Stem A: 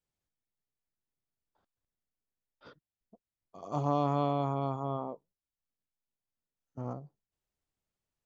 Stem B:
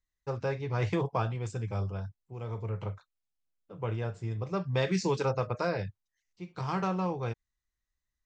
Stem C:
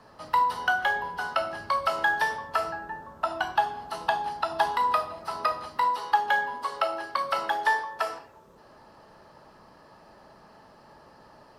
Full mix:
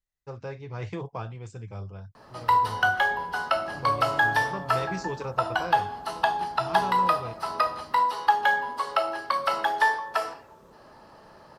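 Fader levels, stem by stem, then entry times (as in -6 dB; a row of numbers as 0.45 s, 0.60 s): -10.0 dB, -5.0 dB, +2.0 dB; 0.00 s, 0.00 s, 2.15 s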